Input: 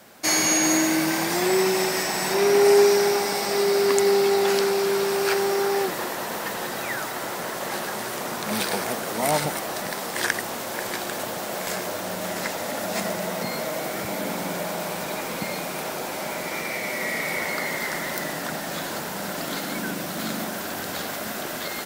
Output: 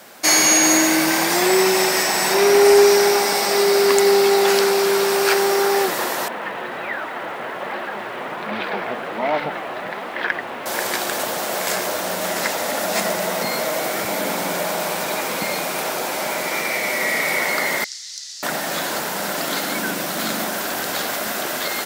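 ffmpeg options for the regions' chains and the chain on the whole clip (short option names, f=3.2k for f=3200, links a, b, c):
-filter_complex "[0:a]asettb=1/sr,asplit=3[a][b][c];[a]atrim=end=6.284[d];[b]atrim=start=6.28:end=10.66,asetpts=PTS-STARTPTS,afade=t=in:d=0.004:c=qsin,afade=t=out:st=4.376:d=0.004:c=qsin,lowpass=f=3k:w=0.5412,lowpass=f=3k:w=1.3066,flanger=delay=2.7:depth=5.7:regen=-35:speed=1.3:shape=triangular,aeval=exprs='val(0)*gte(abs(val(0)),0.00376)':c=same[e];[c]atrim=start=10.656[f];[d][e]acrossfade=d=0.004:c1=hsin:c2=qsin[g];[g][f]acrossfade=d=0.004:c1=qsin:c2=hsin,asettb=1/sr,asplit=3[h][i][j];[h]atrim=end=17.844[k];[i]atrim=start=17.84:end=18.43,asetpts=PTS-STARTPTS,afade=t=in:d=0.004:c=qsin,afade=t=out:st=0.586:d=0.004:c=qsin,asuperpass=centerf=5400:order=4:qfactor=1.9,aeval=exprs='val(0)+0.000282*(sin(2*PI*60*n/s)+sin(2*PI*2*60*n/s)/2+sin(2*PI*3*60*n/s)/3+sin(2*PI*4*60*n/s)/4+sin(2*PI*5*60*n/s)/5)':c=same[l];[j]atrim=start=18.426[m];[k][l]acrossfade=d=0.004:c1=hsin:c2=qsin[n];[n][m]acrossfade=d=0.004:c1=qsin:c2=hsin,lowshelf=f=200:g=-12,acontrast=88"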